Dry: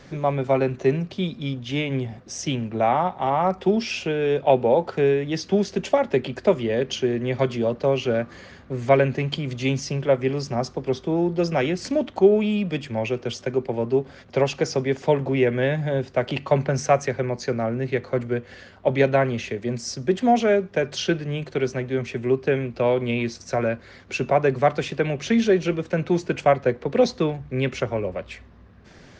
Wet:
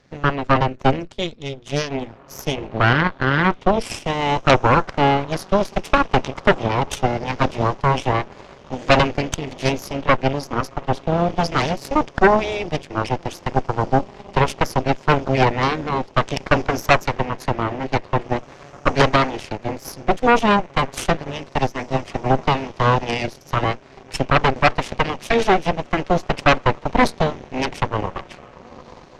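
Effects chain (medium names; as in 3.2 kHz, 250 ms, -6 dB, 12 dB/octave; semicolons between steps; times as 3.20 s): echo that smears into a reverb 1967 ms, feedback 46%, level -15 dB; Chebyshev shaper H 3 -16 dB, 6 -7 dB, 7 -28 dB, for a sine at -4.5 dBFS; trim +1 dB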